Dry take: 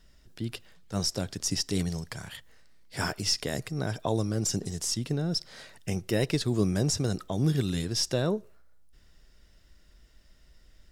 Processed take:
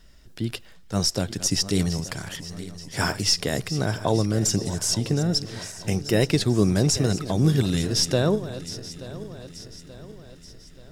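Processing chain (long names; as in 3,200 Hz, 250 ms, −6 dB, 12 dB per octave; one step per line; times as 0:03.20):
feedback delay that plays each chunk backwards 440 ms, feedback 69%, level −14 dB
level +6 dB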